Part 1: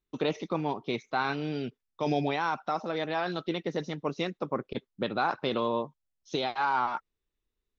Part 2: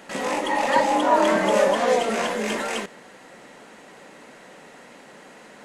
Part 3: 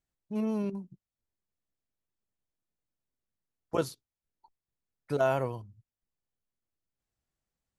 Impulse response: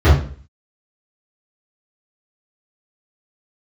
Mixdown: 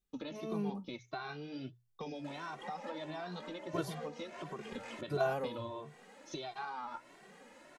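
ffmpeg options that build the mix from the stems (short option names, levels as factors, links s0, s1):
-filter_complex "[0:a]bass=f=250:g=4,treble=f=4000:g=6,volume=1.19[s0];[1:a]acrossover=split=5700[s1][s2];[s2]acompressor=threshold=0.00447:ratio=4:attack=1:release=60[s3];[s1][s3]amix=inputs=2:normalize=0,acompressor=threshold=0.0398:ratio=5,adelay=2150,volume=0.596[s4];[2:a]volume=0.668[s5];[s0][s4]amix=inputs=2:normalize=0,flanger=delay=5.2:depth=8.3:regen=60:speed=1.1:shape=sinusoidal,acompressor=threshold=0.0141:ratio=5,volume=1[s6];[s5][s6]amix=inputs=2:normalize=0,bandreject=f=60:t=h:w=6,bandreject=f=120:t=h:w=6,asplit=2[s7][s8];[s8]adelay=2.1,afreqshift=1.5[s9];[s7][s9]amix=inputs=2:normalize=1"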